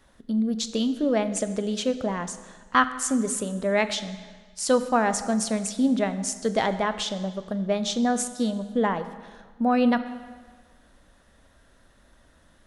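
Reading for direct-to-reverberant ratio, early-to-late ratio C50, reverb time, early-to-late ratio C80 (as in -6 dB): 11.0 dB, 12.5 dB, 1.5 s, 13.5 dB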